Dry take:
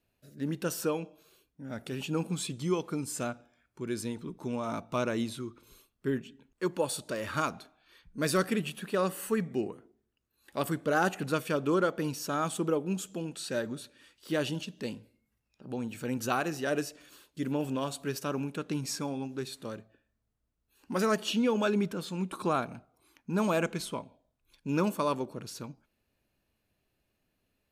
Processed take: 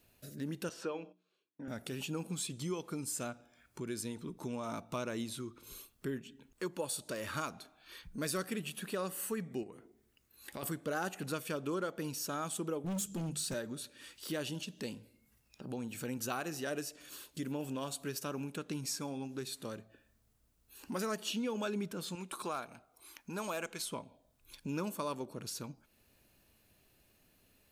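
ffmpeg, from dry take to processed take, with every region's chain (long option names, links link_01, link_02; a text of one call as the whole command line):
ffmpeg -i in.wav -filter_complex "[0:a]asettb=1/sr,asplit=3[link_01][link_02][link_03];[link_01]atrim=end=0.694[link_04];[link_02]atrim=start=0.69:end=1.68,asetpts=PTS-STARTPTS,afade=type=in:duration=0.004:curve=qsin,afade=type=out:start_time=0.986:duration=0.004:curve=qsin,agate=range=-20dB:threshold=-55dB:ratio=16:release=100:detection=peak,highpass=240,lowpass=3400,bandreject=frequency=60:width_type=h:width=6,bandreject=frequency=120:width_type=h:width=6,bandreject=frequency=180:width_type=h:width=6,bandreject=frequency=240:width_type=h:width=6,bandreject=frequency=300:width_type=h:width=6,bandreject=frequency=360:width_type=h:width=6[link_05];[link_03]atrim=start=1.676[link_06];[link_04][link_05]acrossfade=duration=0.004:curve1=hsin:curve2=qsin[link_07];[link_07][link_06]acrossfade=duration=0.004:curve1=qsin:curve2=hsin,asettb=1/sr,asplit=3[link_08][link_09][link_10];[link_08]atrim=end=9.634[link_11];[link_09]atrim=start=9.63:end=10.63,asetpts=PTS-STARTPTS,afade=type=in:duration=0.004:curve=qsin,afade=type=out:start_time=0.996:duration=0.004:curve=qsin,equalizer=frequency=2100:width=4.9:gain=5.5,acompressor=threshold=-41dB:ratio=3:attack=3.2:release=140:knee=1:detection=peak[link_12];[link_10]atrim=start=10.626[link_13];[link_11][link_12]acrossfade=duration=0.004:curve1=hsin:curve2=qsin[link_14];[link_14][link_13]acrossfade=duration=0.004:curve1=qsin:curve2=hsin,asettb=1/sr,asplit=3[link_15][link_16][link_17];[link_15]atrim=end=12.844[link_18];[link_16]atrim=start=12.84:end=13.54,asetpts=PTS-STARTPTS,afade=type=in:duration=0.004:curve=qsin,afade=type=out:start_time=0.696:duration=0.004:curve=qsin,bass=frequency=250:gain=15,treble=frequency=4000:gain=6,bandreject=frequency=50:width_type=h:width=6,bandreject=frequency=100:width_type=h:width=6,bandreject=frequency=150:width_type=h:width=6,bandreject=frequency=200:width_type=h:width=6,bandreject=frequency=250:width_type=h:width=6,asoftclip=type=hard:threshold=-28dB[link_19];[link_17]atrim=start=13.536[link_20];[link_18][link_19]acrossfade=duration=0.004:curve1=hsin:curve2=qsin[link_21];[link_21][link_20]acrossfade=duration=0.004:curve1=qsin:curve2=hsin,asettb=1/sr,asplit=3[link_22][link_23][link_24];[link_22]atrim=end=22.154[link_25];[link_23]atrim=start=22.15:end=23.91,asetpts=PTS-STARTPTS,afade=type=in:duration=0.004:curve=qsin,afade=type=out:start_time=1.756:duration=0.004:curve=qsin,equalizer=frequency=140:width=0.44:gain=-11,volume=21dB,asoftclip=hard,volume=-21dB[link_26];[link_24]atrim=start=23.906[link_27];[link_25][link_26]acrossfade=duration=0.004:curve1=hsin:curve2=qsin[link_28];[link_28][link_27]acrossfade=duration=0.004:curve1=qsin:curve2=hsin,highshelf=frequency=4900:gain=8,acompressor=threshold=-56dB:ratio=2,volume=7.5dB" out.wav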